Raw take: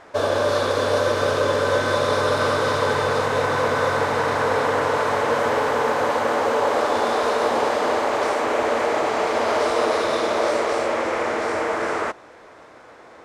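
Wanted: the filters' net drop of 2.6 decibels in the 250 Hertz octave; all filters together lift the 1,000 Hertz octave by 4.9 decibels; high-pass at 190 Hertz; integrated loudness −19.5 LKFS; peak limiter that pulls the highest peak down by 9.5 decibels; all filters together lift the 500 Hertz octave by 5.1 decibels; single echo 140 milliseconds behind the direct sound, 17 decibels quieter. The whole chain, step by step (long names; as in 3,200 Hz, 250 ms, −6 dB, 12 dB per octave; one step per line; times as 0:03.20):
high-pass filter 190 Hz
parametric band 250 Hz −6 dB
parametric band 500 Hz +6 dB
parametric band 1,000 Hz +4.5 dB
brickwall limiter −13 dBFS
single-tap delay 140 ms −17 dB
level +2 dB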